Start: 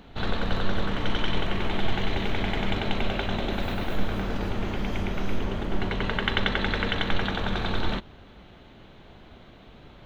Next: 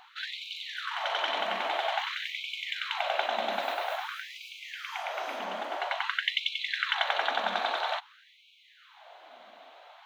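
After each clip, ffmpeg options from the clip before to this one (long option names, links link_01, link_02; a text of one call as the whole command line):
ffmpeg -i in.wav -af "lowshelf=frequency=520:width_type=q:width=3:gain=-9,afftfilt=real='re*gte(b*sr/1024,200*pow(2200/200,0.5+0.5*sin(2*PI*0.5*pts/sr)))':imag='im*gte(b*sr/1024,200*pow(2200/200,0.5+0.5*sin(2*PI*0.5*pts/sr)))':win_size=1024:overlap=0.75" out.wav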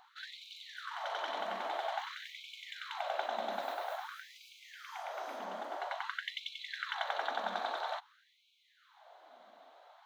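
ffmpeg -i in.wav -af "equalizer=frequency=2600:width_type=o:width=0.87:gain=-10,volume=-5.5dB" out.wav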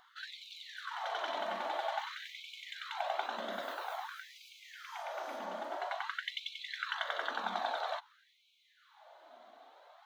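ffmpeg -i in.wav -af "flanger=delay=0.6:depth=2.9:regen=-40:speed=0.28:shape=sinusoidal,volume=4.5dB" out.wav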